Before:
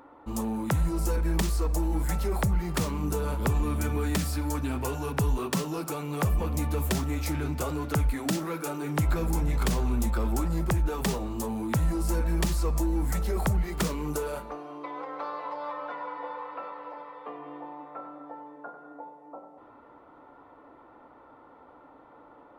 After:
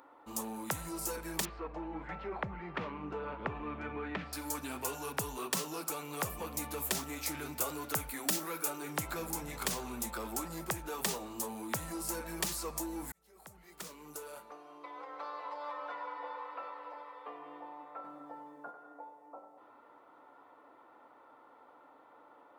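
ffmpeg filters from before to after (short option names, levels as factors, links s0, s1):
-filter_complex "[0:a]asettb=1/sr,asplit=3[s0][s1][s2];[s0]atrim=end=1.454[s3];[s1]atrim=start=1.45:end=4.33,asetpts=PTS-STARTPTS,afade=t=in:d=0.004:c=qsin,afade=t=out:st=2.876:d=0.004:c=qsin,lowpass=f=2600:w=0.5412,lowpass=f=2600:w=1.3066[s4];[s2]atrim=start=4.326[s5];[s3][s4]acrossfade=d=0.004:c1=hsin:c2=qsin[s6];[s6][s5]acrossfade=d=0.004:c1=qsin:c2=hsin,asettb=1/sr,asplit=3[s7][s8][s9];[s7]atrim=end=7.374[s10];[s8]atrim=start=7.37:end=8.7,asetpts=PTS-STARTPTS,afade=t=in:d=0.004:c=qsin,afade=t=out:st=1.326:d=0.004:c=qsin,highshelf=f=12000:g=8.5[s11];[s9]atrim=start=8.696[s12];[s10][s11]acrossfade=d=0.004:c1=hsin:c2=qsin[s13];[s13][s12]acrossfade=d=0.004:c1=qsin:c2=hsin,asettb=1/sr,asplit=3[s14][s15][s16];[s14]atrim=end=18.044[s17];[s15]atrim=start=18.04:end=18.71,asetpts=PTS-STARTPTS,afade=t=in:d=0.004:c=qsin,afade=t=out:st=0.666:d=0.004:c=qsin,bass=f=250:g=13,treble=f=4000:g=6[s18];[s16]atrim=start=18.706[s19];[s17][s18]acrossfade=d=0.004:c1=hsin:c2=qsin[s20];[s20][s19]acrossfade=d=0.004:c1=qsin:c2=hsin,asplit=2[s21][s22];[s21]atrim=end=13.12,asetpts=PTS-STARTPTS,afade=t=out:st=13.116:d=0.004:c=hsin[s23];[s22]atrim=start=13.12,asetpts=PTS-STARTPTS,afade=t=in:d=2.76[s24];[s23][s24]concat=n=2:v=0:a=1,highpass=f=560:p=1,highshelf=f=5200:g=7,volume=0.631"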